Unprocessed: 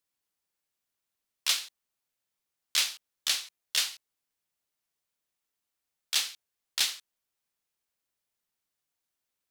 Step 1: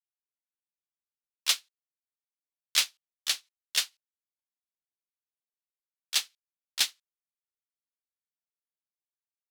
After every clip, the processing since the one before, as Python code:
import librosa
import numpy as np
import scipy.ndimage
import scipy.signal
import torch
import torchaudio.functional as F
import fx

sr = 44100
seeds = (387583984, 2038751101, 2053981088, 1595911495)

y = fx.upward_expand(x, sr, threshold_db=-42.0, expansion=2.5)
y = y * librosa.db_to_amplitude(3.5)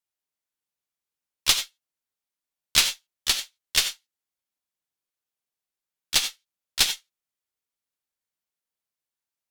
y = fx.rev_gated(x, sr, seeds[0], gate_ms=110, shape='rising', drr_db=7.5)
y = fx.cheby_harmonics(y, sr, harmonics=(6, 8), levels_db=(-17, -27), full_scale_db=-8.5)
y = y * librosa.db_to_amplitude(5.0)